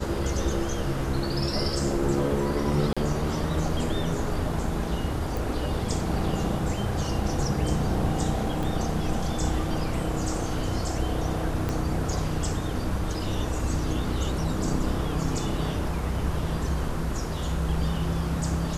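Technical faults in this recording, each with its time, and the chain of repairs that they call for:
0:02.93–0:02.97: drop-out 36 ms
0:05.37: click
0:08.63: click
0:11.69: click −15 dBFS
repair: click removal
repair the gap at 0:02.93, 36 ms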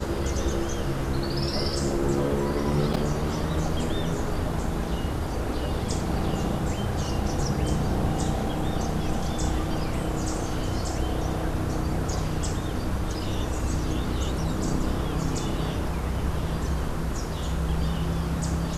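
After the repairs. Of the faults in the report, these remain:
0:05.37: click
0:08.63: click
0:11.69: click

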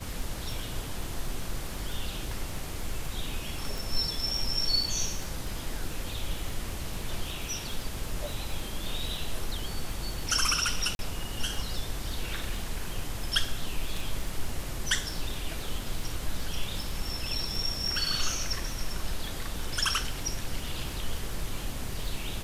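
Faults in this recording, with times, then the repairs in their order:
surface crackle 25 per second −34 dBFS
0:03.78: click
0:10.95–0:10.99: drop-out 41 ms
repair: click removal
repair the gap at 0:10.95, 41 ms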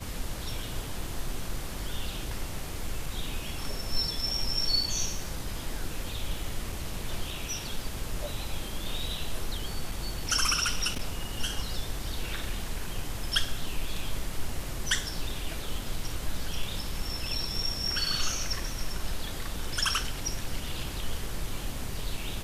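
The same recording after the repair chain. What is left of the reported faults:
none of them is left

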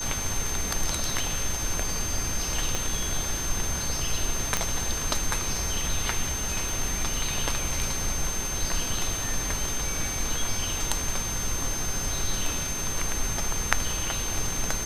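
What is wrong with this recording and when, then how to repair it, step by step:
whistle 6,300 Hz −31 dBFS
0:02.75: click −12 dBFS
0:04.57: click −8 dBFS
0:06.69: click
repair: click removal
notch filter 6,300 Hz, Q 30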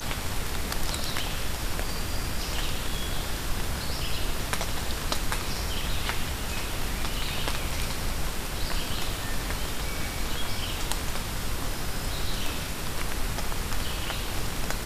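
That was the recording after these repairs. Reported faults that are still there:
0:02.75: click
0:06.69: click

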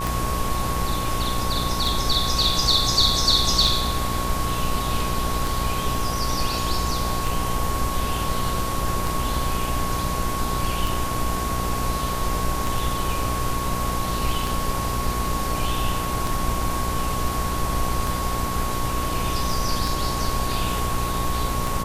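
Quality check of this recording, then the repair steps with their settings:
mains buzz 60 Hz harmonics 19 −29 dBFS
scratch tick 33 1/3 rpm
whistle 1,100 Hz −28 dBFS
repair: click removal
hum removal 60 Hz, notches 19
notch filter 1,100 Hz, Q 30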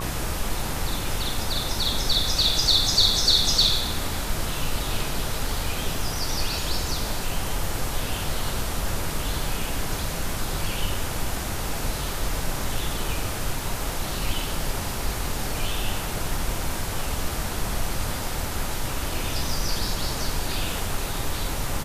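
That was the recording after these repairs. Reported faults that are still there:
none of them is left

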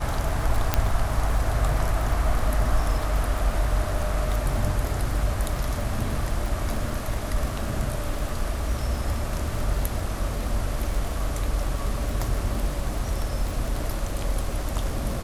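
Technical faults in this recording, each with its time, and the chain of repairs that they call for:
surface crackle 31 per second −28 dBFS
0:00.74: click −4 dBFS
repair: click removal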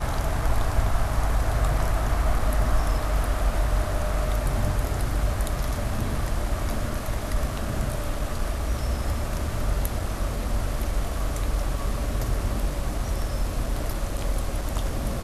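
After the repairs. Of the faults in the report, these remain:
none of them is left

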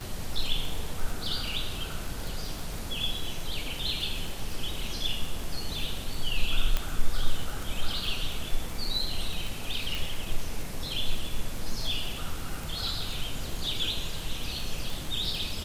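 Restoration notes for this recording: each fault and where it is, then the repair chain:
surface crackle 23 per second −30 dBFS
0:06.77: click −12 dBFS
0:09.95: click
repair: click removal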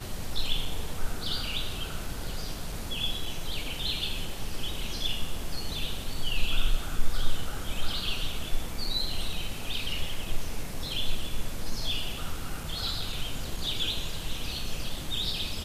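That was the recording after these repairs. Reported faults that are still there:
none of them is left

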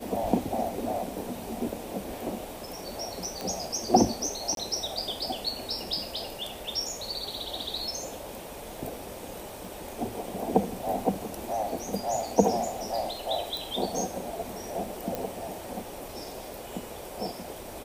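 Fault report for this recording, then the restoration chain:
0:03.41: click
0:04.55–0:04.57: drop-out 22 ms
0:09.65: click
0:13.57: click
0:15.15: click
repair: click removal
repair the gap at 0:04.55, 22 ms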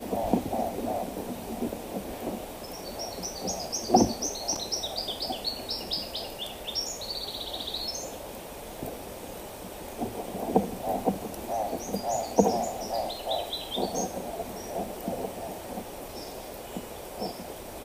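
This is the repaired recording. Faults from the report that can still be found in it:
none of them is left

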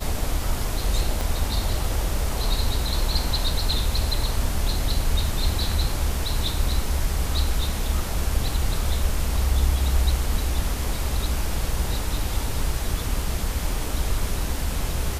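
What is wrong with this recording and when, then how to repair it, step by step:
0:01.21: click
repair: click removal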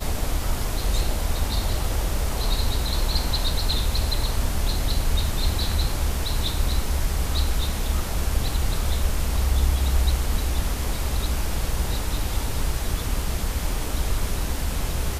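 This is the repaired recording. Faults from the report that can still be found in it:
0:01.21: click

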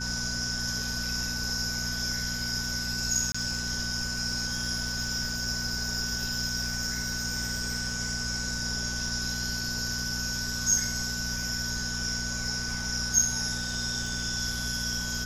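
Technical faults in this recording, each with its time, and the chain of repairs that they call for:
surface crackle 22 per second −35 dBFS
mains hum 60 Hz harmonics 4 −37 dBFS
whistle 1,500 Hz −36 dBFS
0:03.32–0:03.35: drop-out 25 ms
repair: click removal
hum removal 60 Hz, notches 4
notch filter 1,500 Hz, Q 30
repair the gap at 0:03.32, 25 ms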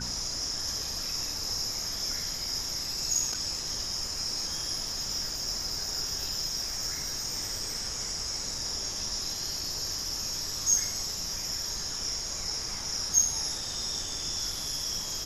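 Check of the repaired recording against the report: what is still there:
none of them is left

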